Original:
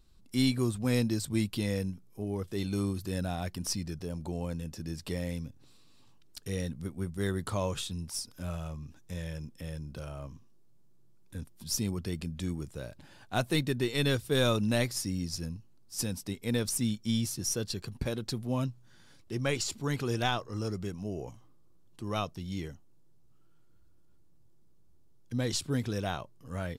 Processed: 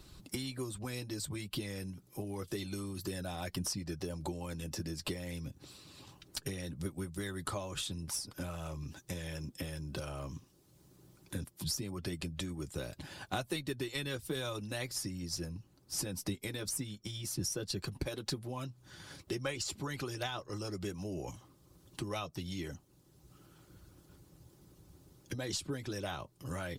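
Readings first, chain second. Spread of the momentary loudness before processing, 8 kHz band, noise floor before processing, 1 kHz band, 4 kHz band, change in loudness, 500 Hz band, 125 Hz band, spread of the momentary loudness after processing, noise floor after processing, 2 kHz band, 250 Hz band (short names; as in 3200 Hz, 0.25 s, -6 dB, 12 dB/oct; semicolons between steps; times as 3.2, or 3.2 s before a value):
13 LU, -3.0 dB, -56 dBFS, -5.5 dB, -4.0 dB, -6.5 dB, -6.5 dB, -7.5 dB, 9 LU, -65 dBFS, -5.0 dB, -8.0 dB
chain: wow and flutter 16 cents; compressor 6:1, threshold -38 dBFS, peak gain reduction 15 dB; harmonic-percussive split harmonic -10 dB; notch comb 230 Hz; three-band squash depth 40%; gain +8.5 dB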